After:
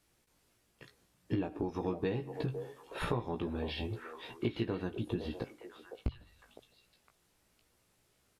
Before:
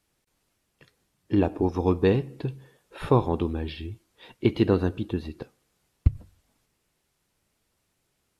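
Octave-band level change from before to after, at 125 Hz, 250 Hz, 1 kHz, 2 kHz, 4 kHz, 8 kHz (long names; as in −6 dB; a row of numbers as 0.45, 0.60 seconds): −11.5 dB, −11.0 dB, −10.5 dB, −5.5 dB, −4.0 dB, can't be measured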